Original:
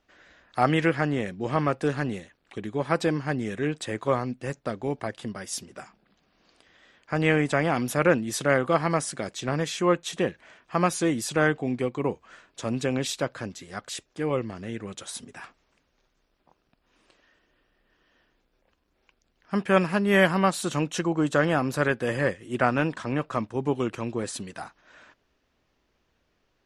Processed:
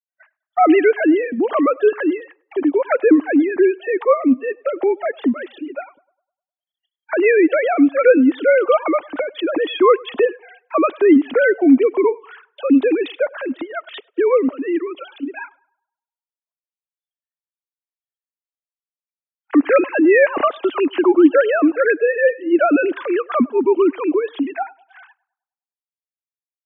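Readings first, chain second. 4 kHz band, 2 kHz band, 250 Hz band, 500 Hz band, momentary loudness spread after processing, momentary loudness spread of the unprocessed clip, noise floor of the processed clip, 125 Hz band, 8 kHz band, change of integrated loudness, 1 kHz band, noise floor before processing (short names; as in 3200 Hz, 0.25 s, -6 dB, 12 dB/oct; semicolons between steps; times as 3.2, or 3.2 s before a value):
+0.5 dB, +6.5 dB, +11.5 dB, +12.0 dB, 14 LU, 14 LU, under -85 dBFS, under -20 dB, under -40 dB, +10.0 dB, +6.5 dB, -72 dBFS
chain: sine-wave speech; gate -56 dBFS, range -28 dB; bell 280 Hz +10 dB 0.67 oct; in parallel at +1 dB: compressor, threshold -30 dBFS, peak gain reduction 17.5 dB; on the sum: spectral noise reduction 25 dB; on a send: narrowing echo 0.101 s, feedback 45%, band-pass 850 Hz, level -23 dB; on the sum: gain +4.5 dB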